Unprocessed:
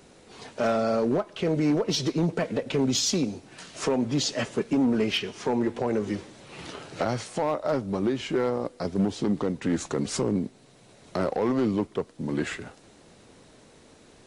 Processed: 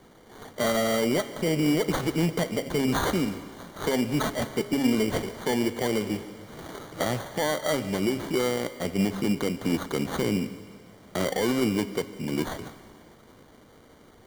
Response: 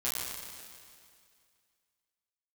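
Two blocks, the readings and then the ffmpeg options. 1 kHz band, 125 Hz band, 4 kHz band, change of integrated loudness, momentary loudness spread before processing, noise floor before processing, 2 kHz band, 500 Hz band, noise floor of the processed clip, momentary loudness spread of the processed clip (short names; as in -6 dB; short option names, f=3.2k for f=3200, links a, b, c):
+0.5 dB, 0.0 dB, -1.0 dB, 0.0 dB, 11 LU, -55 dBFS, +3.5 dB, -0.5 dB, -54 dBFS, 12 LU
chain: -filter_complex "[0:a]bandreject=f=136.7:t=h:w=4,bandreject=f=273.4:t=h:w=4,bandreject=f=410.1:t=h:w=4,bandreject=f=546.8:t=h:w=4,bandreject=f=683.5:t=h:w=4,bandreject=f=820.2:t=h:w=4,bandreject=f=956.9:t=h:w=4,bandreject=f=1.0936k:t=h:w=4,bandreject=f=1.2303k:t=h:w=4,bandreject=f=1.367k:t=h:w=4,bandreject=f=1.5037k:t=h:w=4,bandreject=f=1.6404k:t=h:w=4,bandreject=f=1.7771k:t=h:w=4,bandreject=f=1.9138k:t=h:w=4,bandreject=f=2.0505k:t=h:w=4,bandreject=f=2.1872k:t=h:w=4,bandreject=f=2.3239k:t=h:w=4,bandreject=f=2.4606k:t=h:w=4,bandreject=f=2.5973k:t=h:w=4,bandreject=f=2.734k:t=h:w=4,bandreject=f=2.8707k:t=h:w=4,bandreject=f=3.0074k:t=h:w=4,bandreject=f=3.1441k:t=h:w=4,bandreject=f=3.2808k:t=h:w=4,bandreject=f=3.4175k:t=h:w=4,bandreject=f=3.5542k:t=h:w=4,bandreject=f=3.6909k:t=h:w=4,bandreject=f=3.8276k:t=h:w=4,bandreject=f=3.9643k:t=h:w=4,bandreject=f=4.101k:t=h:w=4,bandreject=f=4.2377k:t=h:w=4,bandreject=f=4.3744k:t=h:w=4,bandreject=f=4.5111k:t=h:w=4,bandreject=f=4.6478k:t=h:w=4,bandreject=f=4.7845k:t=h:w=4,acrusher=samples=17:mix=1:aa=0.000001,asplit=2[a][b];[1:a]atrim=start_sample=2205,adelay=140[c];[b][c]afir=irnorm=-1:irlink=0,volume=-21dB[d];[a][d]amix=inputs=2:normalize=0"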